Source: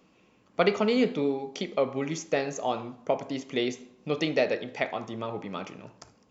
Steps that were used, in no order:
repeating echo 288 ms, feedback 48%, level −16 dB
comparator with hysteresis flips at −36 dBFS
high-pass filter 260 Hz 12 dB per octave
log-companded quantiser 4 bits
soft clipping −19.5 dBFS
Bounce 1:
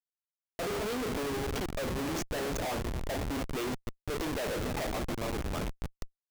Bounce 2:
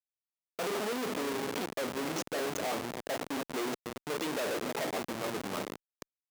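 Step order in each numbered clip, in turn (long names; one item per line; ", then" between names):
soft clipping, then high-pass filter, then log-companded quantiser, then repeating echo, then comparator with hysteresis
repeating echo, then soft clipping, then log-companded quantiser, then comparator with hysteresis, then high-pass filter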